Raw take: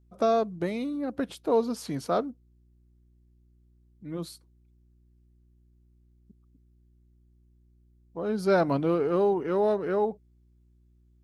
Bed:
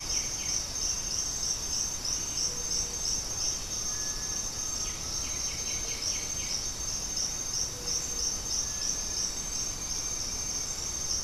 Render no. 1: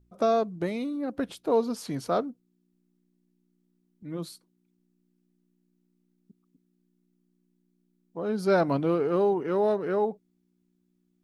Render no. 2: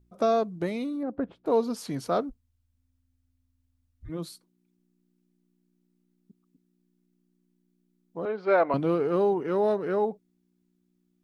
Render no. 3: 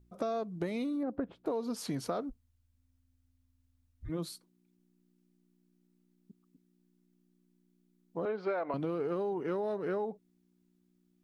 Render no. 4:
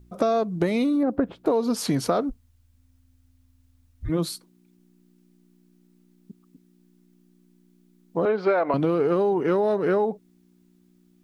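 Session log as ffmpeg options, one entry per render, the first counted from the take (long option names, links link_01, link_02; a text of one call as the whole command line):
ffmpeg -i in.wav -af "bandreject=frequency=60:width_type=h:width=4,bandreject=frequency=120:width_type=h:width=4" out.wav
ffmpeg -i in.wav -filter_complex "[0:a]asettb=1/sr,asplit=3[link_01][link_02][link_03];[link_01]atrim=end=1.034[link_04];[link_02]atrim=start=1.03:end=1.46,asetpts=PTS-STARTPTS,afade=type=in:duration=0.004:curve=qsin,afade=type=out:start_time=0.426:duration=0.004:curve=qsin,lowpass=1200[link_05];[link_03]atrim=start=1.456[link_06];[link_04][link_05]acrossfade=duration=0.004:curve1=hsin:curve2=qsin[link_07];[link_07][link_06]acrossfade=duration=0.004:curve1=qsin:curve2=hsin,asplit=3[link_08][link_09][link_10];[link_08]afade=type=out:start_time=2.29:duration=0.02[link_11];[link_09]afreqshift=-260,afade=type=in:start_time=2.29:duration=0.02,afade=type=out:start_time=4.08:duration=0.02[link_12];[link_10]afade=type=in:start_time=4.08:duration=0.02[link_13];[link_11][link_12][link_13]amix=inputs=3:normalize=0,asettb=1/sr,asplit=3[link_14][link_15][link_16];[link_14]atrim=end=8.254[link_17];[link_15]atrim=start=8.25:end=8.74,asetpts=PTS-STARTPTS,afade=type=in:duration=0.004:curve=qsin,afade=type=out:start_time=0.486:duration=0.004:curve=qsin,highpass=430,equalizer=frequency=470:width_type=q:width=4:gain=5,equalizer=frequency=660:width_type=q:width=4:gain=3,equalizer=frequency=1100:width_type=q:width=4:gain=5,equalizer=frequency=2100:width_type=q:width=4:gain=6,lowpass=frequency=3200:width=0.5412,lowpass=frequency=3200:width=1.3066[link_18];[link_16]atrim=start=8.736[link_19];[link_17][link_18]acrossfade=duration=0.004:curve1=hsin:curve2=qsin[link_20];[link_20][link_19]acrossfade=duration=0.004:curve1=qsin:curve2=hsin" out.wav
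ffmpeg -i in.wav -af "alimiter=limit=-18dB:level=0:latency=1:release=61,acompressor=threshold=-31dB:ratio=6" out.wav
ffmpeg -i in.wav -af "volume=12dB" out.wav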